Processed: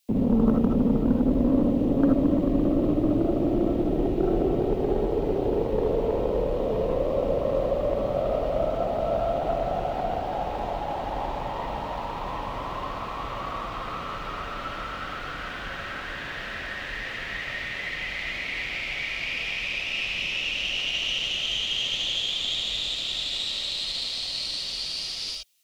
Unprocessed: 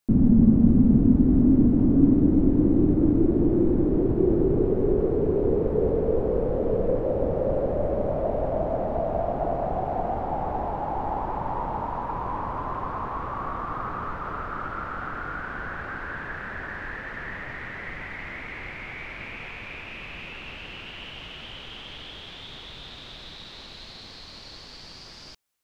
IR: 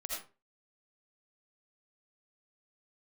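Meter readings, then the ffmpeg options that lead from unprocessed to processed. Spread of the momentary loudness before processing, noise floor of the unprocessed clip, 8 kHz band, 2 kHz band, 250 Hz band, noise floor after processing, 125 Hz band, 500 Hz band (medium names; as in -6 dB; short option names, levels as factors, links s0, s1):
21 LU, -44 dBFS, no reading, +4.5 dB, -3.5 dB, -35 dBFS, -5.0 dB, 0.0 dB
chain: -filter_complex "[0:a]highpass=f=61:p=1,highshelf=f=2100:t=q:w=1.5:g=11.5,aeval=exprs='0.447*(cos(1*acos(clip(val(0)/0.447,-1,1)))-cos(1*PI/2))+0.2*(cos(2*acos(clip(val(0)/0.447,-1,1)))-cos(2*PI/2))+0.0708*(cos(4*acos(clip(val(0)/0.447,-1,1)))-cos(4*PI/2))+0.0501*(cos(6*acos(clip(val(0)/0.447,-1,1)))-cos(6*PI/2))':c=same,acrossover=split=190|330|1600[s0][s1][s2][s3];[s0]asoftclip=type=tanh:threshold=0.0473[s4];[s4][s1][s2][s3]amix=inputs=4:normalize=0[s5];[1:a]atrim=start_sample=2205,afade=t=out:st=0.13:d=0.01,atrim=end_sample=6174[s6];[s5][s6]afir=irnorm=-1:irlink=0,volume=1.26"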